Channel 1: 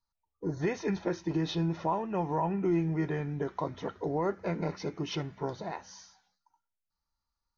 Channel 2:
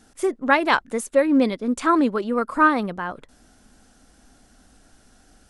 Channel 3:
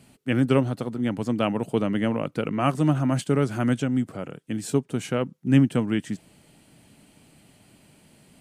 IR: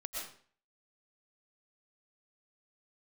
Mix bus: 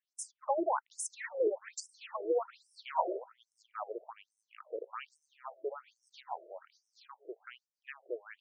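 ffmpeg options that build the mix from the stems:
-filter_complex "[0:a]highshelf=f=2.7k:g=-5,acrossover=split=470[a][b];[a]aeval=exprs='val(0)*(1-1/2+1/2*cos(2*PI*6.9*n/s))':c=same[c];[b]aeval=exprs='val(0)*(1-1/2-1/2*cos(2*PI*6.9*n/s))':c=same[d];[c][d]amix=inputs=2:normalize=0,adelay=600,volume=2dB,asplit=3[e][f][g];[e]atrim=end=3.18,asetpts=PTS-STARTPTS,afade=t=out:st=3.176:d=0.004:c=hsin[h];[f]atrim=start=3.18:end=5.91,asetpts=PTS-STARTPTS,volume=0[i];[g]atrim=start=5.91,asetpts=PTS-STARTPTS,afade=t=in:d=0.004:c=hsin[j];[h][i][j]concat=n=3:v=0:a=1,asplit=2[k][l];[l]volume=-13dB[m];[1:a]agate=range=-27dB:threshold=-46dB:ratio=16:detection=peak,acompressor=threshold=-25dB:ratio=3,volume=-0.5dB[n];[2:a]highpass=440,aemphasis=mode=reproduction:type=75fm,adelay=2350,volume=-10dB,asplit=2[o][p];[p]volume=-21dB[q];[3:a]atrim=start_sample=2205[r];[m][q]amix=inputs=2:normalize=0[s];[s][r]afir=irnorm=-1:irlink=0[t];[k][n][o][t]amix=inputs=4:normalize=0,lowshelf=f=260:g=8.5,afftfilt=real='re*between(b*sr/1024,460*pow(7300/460,0.5+0.5*sin(2*PI*1.2*pts/sr))/1.41,460*pow(7300/460,0.5+0.5*sin(2*PI*1.2*pts/sr))*1.41)':imag='im*between(b*sr/1024,460*pow(7300/460,0.5+0.5*sin(2*PI*1.2*pts/sr))/1.41,460*pow(7300/460,0.5+0.5*sin(2*PI*1.2*pts/sr))*1.41)':win_size=1024:overlap=0.75"

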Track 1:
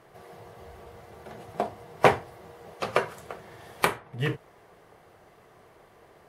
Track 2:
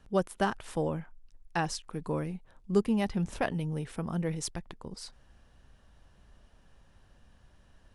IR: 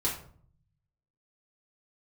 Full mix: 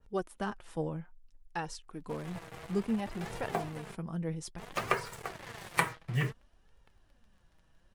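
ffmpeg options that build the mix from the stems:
-filter_complex "[0:a]equalizer=f=125:t=o:w=1:g=12,equalizer=f=250:t=o:w=1:g=4,equalizer=f=1k:t=o:w=1:g=5,equalizer=f=2k:t=o:w=1:g=9,equalizer=f=8k:t=o:w=1:g=10,acrusher=bits=5:mix=0:aa=0.5,acompressor=threshold=-31dB:ratio=1.5,adelay=1950,volume=-1dB,asplit=3[a][b][c];[a]atrim=end=3.95,asetpts=PTS-STARTPTS,afade=t=out:st=3.946:d=0.004:c=hsin[d];[b]atrim=start=3.95:end=4.58,asetpts=PTS-STARTPTS,volume=0[e];[c]atrim=start=4.58,asetpts=PTS-STARTPTS,afade=t=in:d=0.004:c=hsin[f];[d][e][f]concat=n=3:v=0:a=1[g];[1:a]adynamicequalizer=threshold=0.00501:dfrequency=1900:dqfactor=0.7:tfrequency=1900:tqfactor=0.7:attack=5:release=100:ratio=0.375:range=2.5:mode=cutabove:tftype=highshelf,volume=-2.5dB[h];[g][h]amix=inputs=2:normalize=0,flanger=delay=2.1:depth=4.2:regen=45:speed=0.59:shape=sinusoidal"

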